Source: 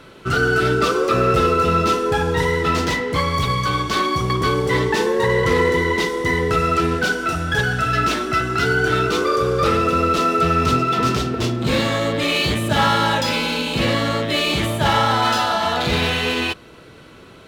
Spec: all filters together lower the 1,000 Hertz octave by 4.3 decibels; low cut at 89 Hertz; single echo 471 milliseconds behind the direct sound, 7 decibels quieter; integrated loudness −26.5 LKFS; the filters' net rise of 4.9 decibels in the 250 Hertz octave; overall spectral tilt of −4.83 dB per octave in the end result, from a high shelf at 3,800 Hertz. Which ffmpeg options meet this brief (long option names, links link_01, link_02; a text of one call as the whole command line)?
ffmpeg -i in.wav -af "highpass=89,equalizer=frequency=250:width_type=o:gain=7,equalizer=frequency=1000:width_type=o:gain=-7,highshelf=frequency=3800:gain=4.5,aecho=1:1:471:0.447,volume=-9.5dB" out.wav